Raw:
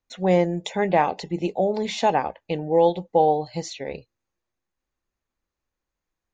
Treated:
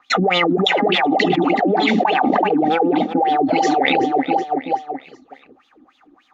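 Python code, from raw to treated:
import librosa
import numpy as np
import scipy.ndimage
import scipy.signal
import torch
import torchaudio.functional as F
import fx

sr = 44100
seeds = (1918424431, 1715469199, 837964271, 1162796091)

p1 = fx.low_shelf(x, sr, hz=150.0, db=5.5)
p2 = np.clip(p1, -10.0 ** (-21.5 / 20.0), 10.0 ** (-21.5 / 20.0))
p3 = p1 + (p2 * librosa.db_to_amplitude(-4.0))
p4 = fx.dispersion(p3, sr, late='lows', ms=70.0, hz=760.0, at=(0.57, 2.05))
p5 = fx.wah_lfo(p4, sr, hz=3.4, low_hz=260.0, high_hz=3600.0, q=8.9)
p6 = fx.small_body(p5, sr, hz=(260.0, 770.0, 1200.0), ring_ms=35, db=14)
p7 = p6 + fx.echo_feedback(p6, sr, ms=378, feedback_pct=49, wet_db=-19, dry=0)
p8 = fx.env_flatten(p7, sr, amount_pct=100)
y = p8 * librosa.db_to_amplitude(-2.0)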